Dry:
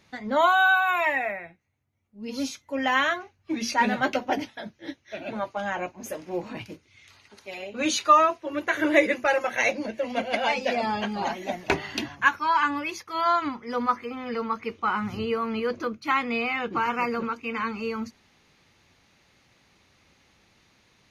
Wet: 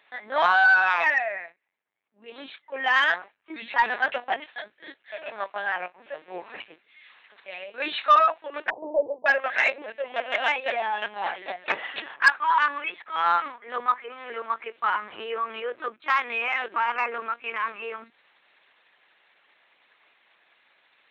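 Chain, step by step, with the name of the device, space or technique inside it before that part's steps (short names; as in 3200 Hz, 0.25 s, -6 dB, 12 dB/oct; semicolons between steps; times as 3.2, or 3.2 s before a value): talking toy (LPC vocoder at 8 kHz pitch kept; HPF 640 Hz 12 dB/oct; bell 1700 Hz +6 dB 0.23 oct; soft clip -10.5 dBFS, distortion -18 dB); 8.7–9.26 steep low-pass 980 Hz 96 dB/oct; gain +2 dB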